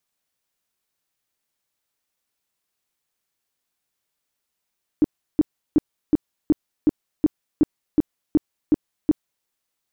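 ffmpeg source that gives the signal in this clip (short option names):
-f lavfi -i "aevalsrc='0.282*sin(2*PI*304*mod(t,0.37))*lt(mod(t,0.37),7/304)':d=4.44:s=44100"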